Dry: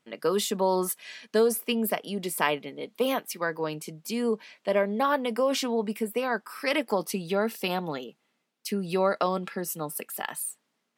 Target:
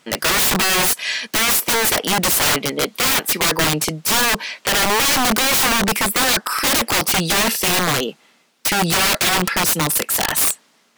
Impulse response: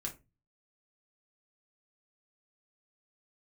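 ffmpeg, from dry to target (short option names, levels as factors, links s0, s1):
-filter_complex "[0:a]asplit=2[s0][s1];[s1]highpass=f=720:p=1,volume=11.2,asoftclip=type=tanh:threshold=0.398[s2];[s0][s2]amix=inputs=2:normalize=0,lowpass=f=2500:p=1,volume=0.501,bass=f=250:g=7,treble=f=4000:g=10,aeval=exprs='(mod(7.94*val(0)+1,2)-1)/7.94':c=same,volume=2.11"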